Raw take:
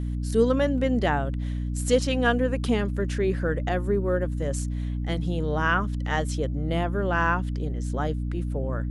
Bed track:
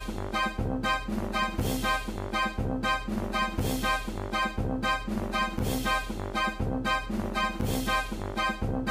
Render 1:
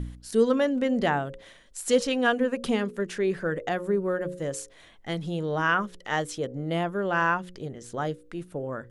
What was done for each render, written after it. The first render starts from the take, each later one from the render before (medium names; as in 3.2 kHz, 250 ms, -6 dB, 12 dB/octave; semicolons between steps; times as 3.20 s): de-hum 60 Hz, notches 9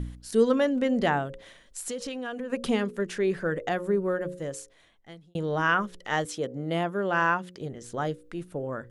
1.26–2.50 s: compression, threshold -31 dBFS; 4.09–5.35 s: fade out; 6.25–7.61 s: high-pass 130 Hz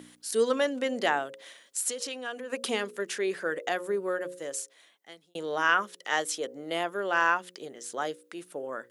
Chebyshev high-pass 330 Hz, order 2; tilt EQ +2.5 dB/octave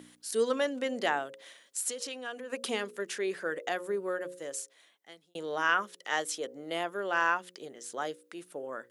trim -3 dB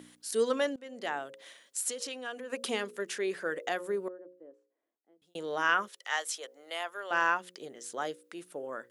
0.76–1.47 s: fade in, from -22 dB; 4.08–5.22 s: ladder band-pass 350 Hz, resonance 40%; 5.88–7.11 s: high-pass 770 Hz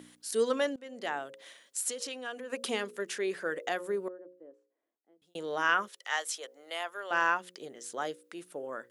no audible change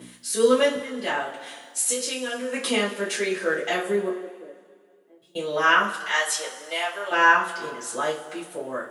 two-slope reverb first 0.28 s, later 1.9 s, from -18 dB, DRR -9.5 dB